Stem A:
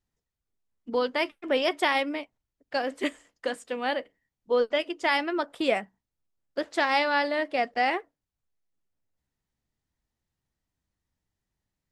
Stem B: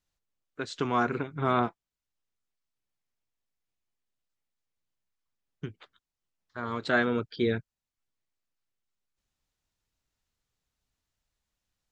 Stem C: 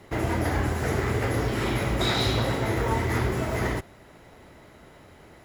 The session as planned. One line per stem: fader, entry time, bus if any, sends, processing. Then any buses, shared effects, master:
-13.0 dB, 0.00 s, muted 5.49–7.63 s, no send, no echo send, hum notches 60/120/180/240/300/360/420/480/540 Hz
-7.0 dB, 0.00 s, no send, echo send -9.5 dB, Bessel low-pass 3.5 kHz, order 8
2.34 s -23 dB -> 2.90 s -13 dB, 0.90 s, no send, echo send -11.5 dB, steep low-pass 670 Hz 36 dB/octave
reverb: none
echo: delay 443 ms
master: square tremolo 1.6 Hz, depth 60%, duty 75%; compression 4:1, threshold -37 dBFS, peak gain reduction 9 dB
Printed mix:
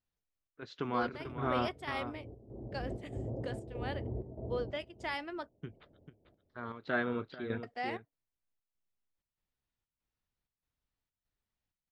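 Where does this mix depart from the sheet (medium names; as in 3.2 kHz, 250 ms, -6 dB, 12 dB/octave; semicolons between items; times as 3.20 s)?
stem A: missing hum notches 60/120/180/240/300/360/420/480/540 Hz; master: missing compression 4:1, threshold -37 dBFS, peak gain reduction 9 dB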